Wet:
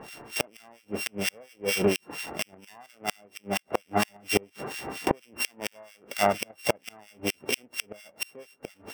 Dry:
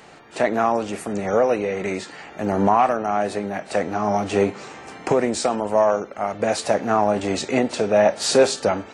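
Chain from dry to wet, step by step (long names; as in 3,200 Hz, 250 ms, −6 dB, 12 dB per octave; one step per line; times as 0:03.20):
samples sorted by size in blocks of 16 samples
two-band tremolo in antiphase 4.3 Hz, depth 100%, crossover 1,600 Hz
gate with flip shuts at −14 dBFS, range −35 dB
level +6 dB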